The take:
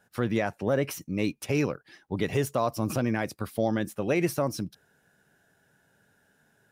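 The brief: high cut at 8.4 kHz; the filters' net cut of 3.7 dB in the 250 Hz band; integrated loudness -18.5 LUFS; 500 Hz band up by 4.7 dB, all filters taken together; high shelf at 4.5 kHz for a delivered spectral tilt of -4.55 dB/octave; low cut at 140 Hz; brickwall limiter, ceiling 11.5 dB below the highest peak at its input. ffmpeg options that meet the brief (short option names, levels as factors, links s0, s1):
-af "highpass=140,lowpass=8400,equalizer=f=250:t=o:g=-7.5,equalizer=f=500:t=o:g=7.5,highshelf=f=4500:g=3.5,volume=5.96,alimiter=limit=0.422:level=0:latency=1"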